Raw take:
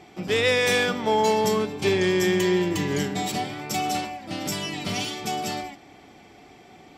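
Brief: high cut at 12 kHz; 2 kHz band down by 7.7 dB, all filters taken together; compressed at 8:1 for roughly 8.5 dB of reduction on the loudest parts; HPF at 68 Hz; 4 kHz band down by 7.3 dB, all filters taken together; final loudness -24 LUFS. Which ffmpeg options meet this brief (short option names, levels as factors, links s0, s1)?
-af "highpass=68,lowpass=12000,equalizer=f=2000:t=o:g=-7.5,equalizer=f=4000:t=o:g=-7,acompressor=threshold=0.0447:ratio=8,volume=2.51"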